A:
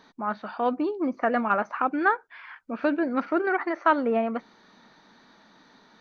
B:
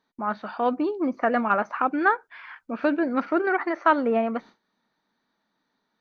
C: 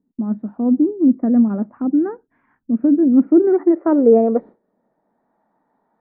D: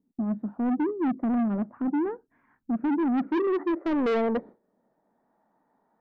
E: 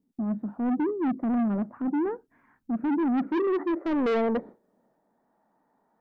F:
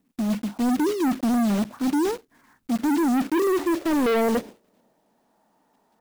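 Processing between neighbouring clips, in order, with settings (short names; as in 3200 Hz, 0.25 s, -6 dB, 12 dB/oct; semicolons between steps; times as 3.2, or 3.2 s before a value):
gate with hold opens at -43 dBFS; gain +1.5 dB
bell 1900 Hz +6.5 dB 0.43 oct; low-pass sweep 250 Hz -> 790 Hz, 2.93–5.44; gain +7.5 dB
soft clip -19 dBFS, distortion -7 dB; gain -3.5 dB
transient shaper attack -2 dB, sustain +3 dB
block floating point 3-bit; gain +4.5 dB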